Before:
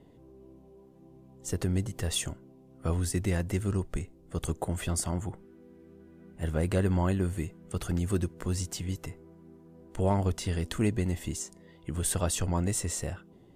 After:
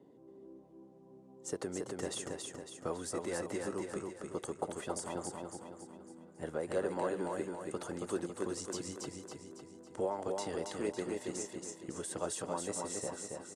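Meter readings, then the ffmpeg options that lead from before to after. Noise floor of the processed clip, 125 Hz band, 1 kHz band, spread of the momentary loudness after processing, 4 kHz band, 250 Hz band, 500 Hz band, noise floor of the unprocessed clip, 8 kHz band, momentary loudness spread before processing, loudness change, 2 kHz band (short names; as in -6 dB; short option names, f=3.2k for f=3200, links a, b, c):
-58 dBFS, -20.0 dB, -2.5 dB, 16 LU, -8.0 dB, -8.5 dB, -1.5 dB, -56 dBFS, -7.0 dB, 12 LU, -8.0 dB, -5.5 dB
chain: -filter_complex "[0:a]highpass=260,acrossover=split=390|4900[a][b][c];[a]acompressor=threshold=-47dB:ratio=10[d];[d][b][c]amix=inputs=3:normalize=0,equalizer=f=2.6k:t=o:w=1.2:g=-6,asplit=2[e][f];[f]aeval=exprs='sgn(val(0))*max(abs(val(0))-0.00335,0)':c=same,volume=-7dB[g];[e][g]amix=inputs=2:normalize=0,alimiter=limit=-22dB:level=0:latency=1:release=286,lowpass=f=9.9k:w=0.5412,lowpass=f=9.9k:w=1.3066,tiltshelf=f=1.2k:g=4,bandreject=f=680:w=12,aecho=1:1:277|554|831|1108|1385|1662:0.668|0.327|0.16|0.0786|0.0385|0.0189,volume=-3.5dB"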